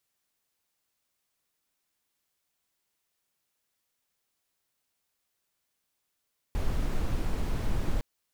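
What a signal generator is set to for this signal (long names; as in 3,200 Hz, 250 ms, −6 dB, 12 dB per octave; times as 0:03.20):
noise brown, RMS −27 dBFS 1.46 s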